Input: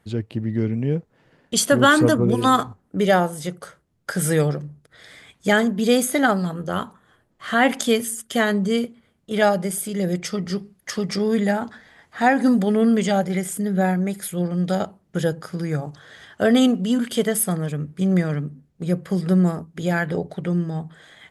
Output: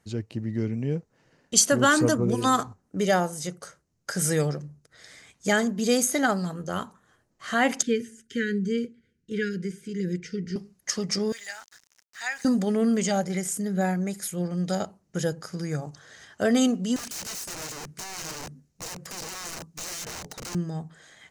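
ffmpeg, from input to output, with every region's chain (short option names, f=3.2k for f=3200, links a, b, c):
-filter_complex "[0:a]asettb=1/sr,asplit=3[a][b][c];[a]atrim=end=7.824[d];[b]atrim=start=7.82:end=10.56,asetpts=PTS-STARTPTS,afade=t=in:d=0.004:c=qsin,afade=t=out:st=2.736:d=0.004:c=qsin,acrossover=split=3600[e][f];[f]acompressor=threshold=-40dB:ratio=4:attack=1:release=60[g];[e][g]amix=inputs=2:normalize=0,asuperstop=centerf=840:order=20:qfactor=0.9,aemphasis=mode=reproduction:type=75kf[h];[c]atrim=start=10.556[i];[d][h]acrossfade=d=0.004:c1=hsin:c2=qsin[j];[j][i]acrossfade=d=0.004:c1=qsin:c2=hsin,asettb=1/sr,asplit=3[k][l][m];[k]atrim=end=11.324[n];[l]atrim=start=11.32:end=12.45,asetpts=PTS-STARTPTS,afade=t=in:d=0.004:c=qsin,afade=t=out:st=1.126:d=0.004:c=qsin,asuperpass=centerf=4400:order=4:qfactor=0.54,aeval=exprs='val(0)*gte(abs(val(0)),0.00531)':c=same[o];[m]atrim=start=12.446[p];[n][o]acrossfade=d=0.004:c1=hsin:c2=qsin[q];[q][p]acrossfade=d=0.004:c1=qsin:c2=hsin,asettb=1/sr,asplit=3[r][s][t];[r]atrim=end=16.964[u];[s]atrim=start=16.96:end=20.55,asetpts=PTS-STARTPTS,afade=t=in:d=0.004:c=qsin,afade=t=out:st=3.586:d=0.004:c=qsin,highshelf=f=2.3k:g=6,acompressor=threshold=-26dB:ratio=2.5:attack=3.2:release=140:knee=1:detection=peak,aeval=exprs='(mod(28.2*val(0)+1,2)-1)/28.2':c=same[v];[t]atrim=start=20.546[w];[u][v]acrossfade=d=0.004:c1=hsin:c2=qsin[x];[x][w]acrossfade=d=0.004:c1=qsin:c2=hsin,equalizer=f=6.2k:t=o:w=0.83:g=11.5,bandreject=f=3.4k:w=11,volume=-5.5dB"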